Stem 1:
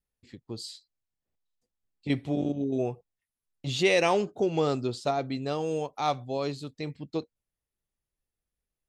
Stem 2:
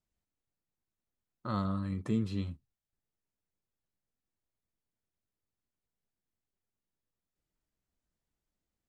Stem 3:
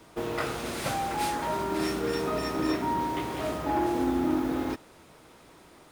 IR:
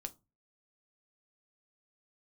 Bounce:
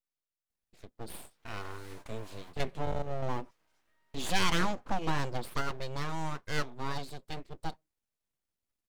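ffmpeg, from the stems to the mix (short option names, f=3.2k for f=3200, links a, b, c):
-filter_complex "[0:a]adelay=500,volume=-2.5dB,asplit=2[a][b];[b]volume=-21dB[c];[1:a]highpass=f=330:p=1,volume=-1.5dB,asplit=2[d][e];[2:a]highpass=640,acompressor=threshold=-34dB:ratio=6,adelay=1050,volume=-18dB,asplit=2[f][g];[g]volume=-15.5dB[h];[e]apad=whole_len=307042[i];[f][i]sidechaingate=range=-33dB:threshold=-46dB:ratio=16:detection=peak[j];[3:a]atrim=start_sample=2205[k];[c][h]amix=inputs=2:normalize=0[l];[l][k]afir=irnorm=-1:irlink=0[m];[a][d][j][m]amix=inputs=4:normalize=0,aeval=exprs='abs(val(0))':c=same"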